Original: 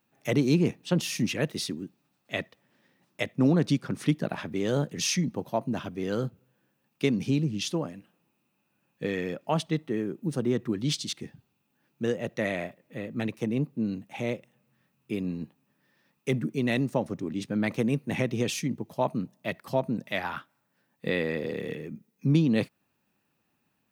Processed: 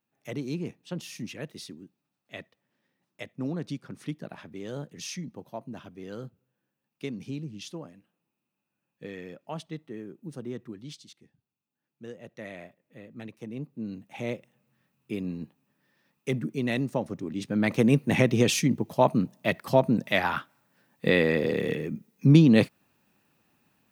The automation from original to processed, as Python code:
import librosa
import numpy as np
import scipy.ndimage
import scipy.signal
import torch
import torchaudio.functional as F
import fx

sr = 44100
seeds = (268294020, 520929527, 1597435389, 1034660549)

y = fx.gain(x, sr, db=fx.line((10.6, -10.0), (11.19, -19.5), (12.6, -11.0), (13.39, -11.0), (14.31, -1.5), (17.3, -1.5), (17.92, 6.0)))